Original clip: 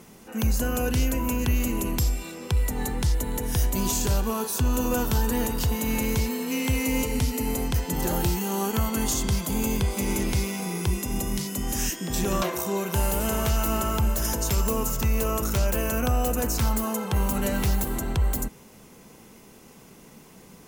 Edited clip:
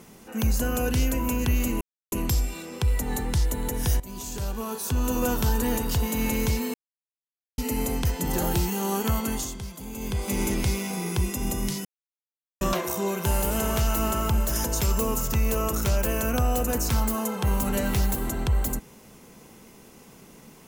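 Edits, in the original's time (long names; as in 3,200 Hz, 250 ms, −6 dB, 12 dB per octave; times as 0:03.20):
0:01.81: splice in silence 0.31 s
0:03.69–0:04.94: fade in, from −16.5 dB
0:06.43–0:07.27: silence
0:08.87–0:10.02: duck −11.5 dB, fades 0.39 s
0:11.54–0:12.30: silence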